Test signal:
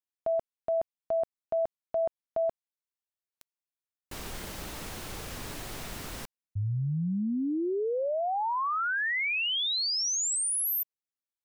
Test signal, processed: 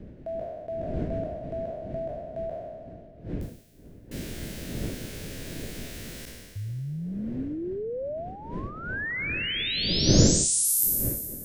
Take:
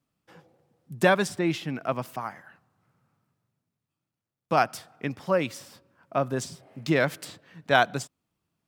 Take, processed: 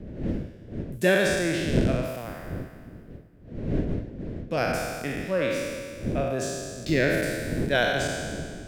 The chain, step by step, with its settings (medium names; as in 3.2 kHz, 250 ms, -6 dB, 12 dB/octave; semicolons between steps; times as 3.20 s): spectral sustain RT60 1.86 s; wind noise 270 Hz -29 dBFS; high-order bell 1 kHz -11.5 dB 1 oct; trim -3.5 dB